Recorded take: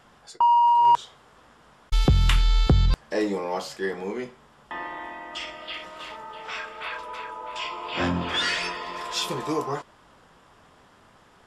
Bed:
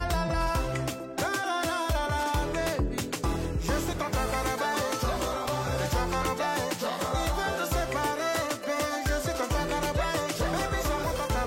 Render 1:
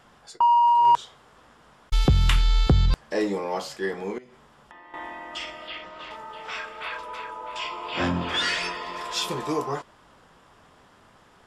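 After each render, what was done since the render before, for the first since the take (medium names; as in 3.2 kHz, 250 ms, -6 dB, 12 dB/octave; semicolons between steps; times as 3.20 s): 4.18–4.94 s: compression 8:1, threshold -45 dBFS; 5.68–6.11 s: distance through air 120 m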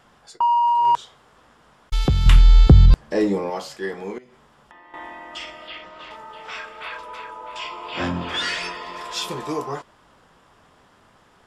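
2.26–3.50 s: bass shelf 420 Hz +9.5 dB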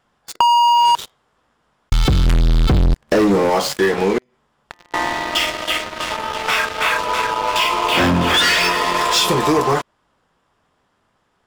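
waveshaping leveller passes 5; compression 6:1, threshold -13 dBFS, peak gain reduction 8.5 dB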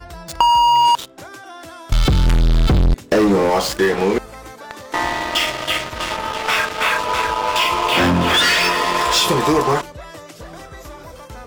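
add bed -7.5 dB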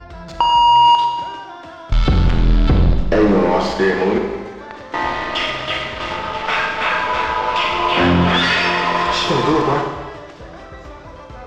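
distance through air 170 m; Schroeder reverb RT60 1.3 s, combs from 31 ms, DRR 3 dB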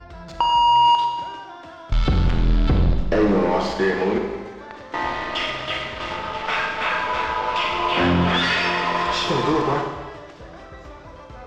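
trim -4.5 dB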